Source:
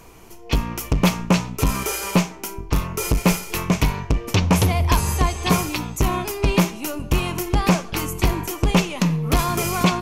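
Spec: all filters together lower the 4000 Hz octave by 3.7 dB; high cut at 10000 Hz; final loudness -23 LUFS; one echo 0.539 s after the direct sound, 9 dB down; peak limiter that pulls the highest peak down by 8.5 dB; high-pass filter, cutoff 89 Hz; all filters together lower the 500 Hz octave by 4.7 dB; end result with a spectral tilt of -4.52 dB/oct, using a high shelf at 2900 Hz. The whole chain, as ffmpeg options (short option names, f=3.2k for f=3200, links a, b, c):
-af "highpass=89,lowpass=10k,equalizer=f=500:t=o:g=-6.5,highshelf=f=2.9k:g=3.5,equalizer=f=4k:t=o:g=-8,alimiter=limit=-12.5dB:level=0:latency=1,aecho=1:1:539:0.355,volume=2.5dB"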